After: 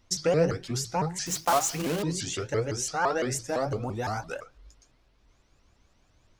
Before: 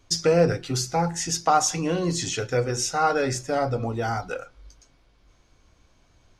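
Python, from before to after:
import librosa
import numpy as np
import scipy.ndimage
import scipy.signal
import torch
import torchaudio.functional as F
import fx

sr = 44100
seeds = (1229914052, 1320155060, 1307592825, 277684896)

y = fx.block_float(x, sr, bits=3, at=(1.26, 2.03))
y = fx.high_shelf(y, sr, hz=7700.0, db=10.0, at=(3.31, 4.41))
y = fx.vibrato_shape(y, sr, shape='saw_up', rate_hz=5.9, depth_cents=250.0)
y = y * librosa.db_to_amplitude(-4.5)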